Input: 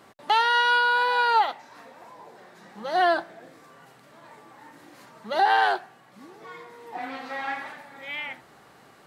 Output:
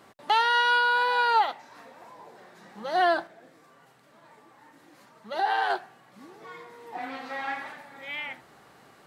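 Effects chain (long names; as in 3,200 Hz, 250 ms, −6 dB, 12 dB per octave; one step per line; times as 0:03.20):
0:03.27–0:05.70: flanger 1.5 Hz, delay 0.5 ms, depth 6.2 ms, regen +71%
level −1.5 dB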